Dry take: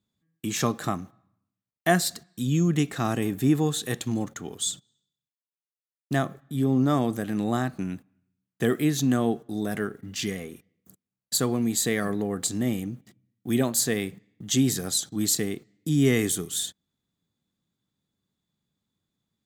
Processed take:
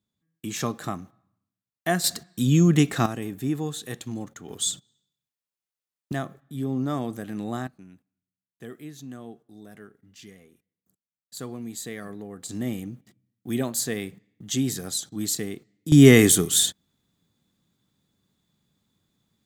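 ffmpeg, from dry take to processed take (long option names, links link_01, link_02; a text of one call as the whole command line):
ffmpeg -i in.wav -af "asetnsamples=nb_out_samples=441:pad=0,asendcmd='2.04 volume volume 5dB;3.06 volume volume -5.5dB;4.49 volume volume 2dB;6.12 volume volume -5dB;7.67 volume volume -17dB;11.37 volume volume -10.5dB;12.49 volume volume -3dB;15.92 volume volume 9dB',volume=-3dB" out.wav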